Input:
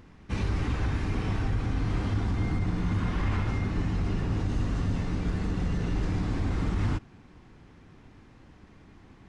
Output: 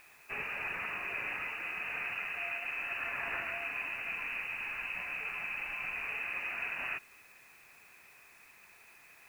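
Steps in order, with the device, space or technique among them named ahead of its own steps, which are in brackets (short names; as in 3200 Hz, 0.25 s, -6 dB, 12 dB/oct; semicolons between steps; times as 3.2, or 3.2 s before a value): scrambled radio voice (BPF 320–2600 Hz; inverted band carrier 2800 Hz; white noise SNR 25 dB)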